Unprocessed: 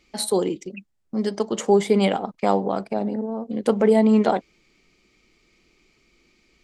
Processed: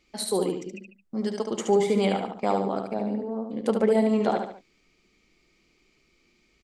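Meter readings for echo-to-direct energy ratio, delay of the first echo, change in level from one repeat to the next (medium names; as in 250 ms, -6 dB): -4.5 dB, 72 ms, -7.5 dB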